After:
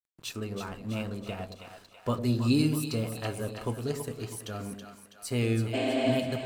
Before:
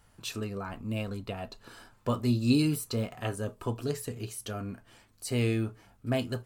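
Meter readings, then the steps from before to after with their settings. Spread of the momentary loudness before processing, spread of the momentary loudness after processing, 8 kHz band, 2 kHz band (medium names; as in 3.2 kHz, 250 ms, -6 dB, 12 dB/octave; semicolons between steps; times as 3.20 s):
16 LU, 16 LU, 0.0 dB, +2.0 dB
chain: crossover distortion -52.5 dBFS; spectral replace 5.77–6.12 s, 250–8700 Hz after; two-band feedback delay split 630 Hz, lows 105 ms, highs 326 ms, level -7.5 dB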